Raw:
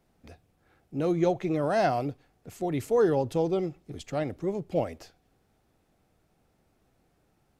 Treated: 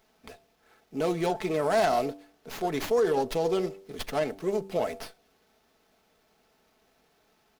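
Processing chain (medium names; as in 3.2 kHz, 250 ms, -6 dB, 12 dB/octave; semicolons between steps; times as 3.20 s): band-stop 560 Hz, Q 16; comb 4.6 ms, depth 51%; de-hum 97.11 Hz, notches 9; peak limiter -19.5 dBFS, peak gain reduction 9 dB; tone controls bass -13 dB, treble +10 dB; sliding maximum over 5 samples; trim +4.5 dB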